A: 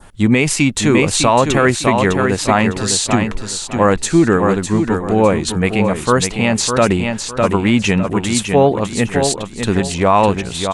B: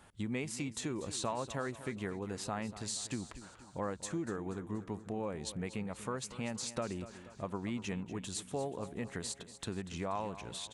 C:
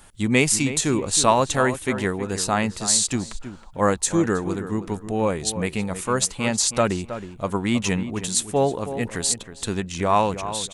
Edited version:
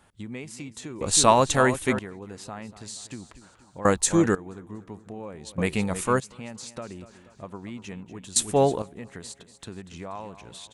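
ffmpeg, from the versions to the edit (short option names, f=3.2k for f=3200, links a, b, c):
-filter_complex "[2:a]asplit=4[a][b][c][d];[1:a]asplit=5[e][f][g][h][i];[e]atrim=end=1.012[j];[a]atrim=start=1.008:end=1.992[k];[f]atrim=start=1.988:end=3.852[l];[b]atrim=start=3.848:end=4.352[m];[g]atrim=start=4.348:end=5.582[n];[c]atrim=start=5.578:end=6.202[o];[h]atrim=start=6.198:end=8.362[p];[d]atrim=start=8.358:end=8.822[q];[i]atrim=start=8.818[r];[j][k]acrossfade=d=0.004:c1=hsin:c2=hsin[s];[s][l]acrossfade=d=0.004:c1=hsin:c2=hsin[t];[t][m]acrossfade=d=0.004:c1=hsin:c2=hsin[u];[u][n]acrossfade=d=0.004:c1=hsin:c2=hsin[v];[v][o]acrossfade=d=0.004:c1=hsin:c2=hsin[w];[w][p]acrossfade=d=0.004:c1=hsin:c2=hsin[x];[x][q]acrossfade=d=0.004:c1=hsin:c2=hsin[y];[y][r]acrossfade=d=0.004:c1=hsin:c2=hsin"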